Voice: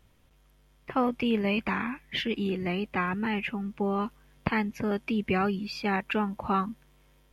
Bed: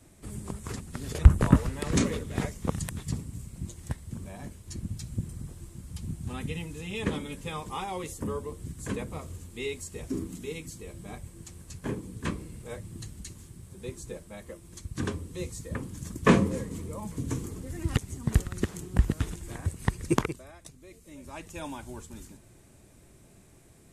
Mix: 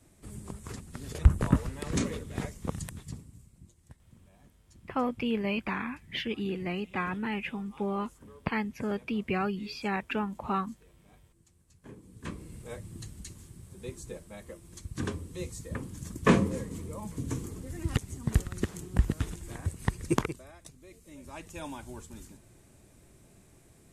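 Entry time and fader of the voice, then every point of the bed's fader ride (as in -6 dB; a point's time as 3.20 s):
4.00 s, -3.5 dB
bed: 2.82 s -4.5 dB
3.76 s -19 dB
11.75 s -19 dB
12.53 s -2 dB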